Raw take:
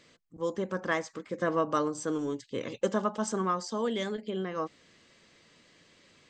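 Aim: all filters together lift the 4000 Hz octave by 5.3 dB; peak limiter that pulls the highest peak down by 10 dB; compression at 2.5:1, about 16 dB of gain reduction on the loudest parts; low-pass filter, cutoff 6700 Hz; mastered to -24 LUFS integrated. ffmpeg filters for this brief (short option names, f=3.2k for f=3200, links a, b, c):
-af "lowpass=6.7k,equalizer=f=4k:t=o:g=7.5,acompressor=threshold=-48dB:ratio=2.5,volume=25.5dB,alimiter=limit=-13dB:level=0:latency=1"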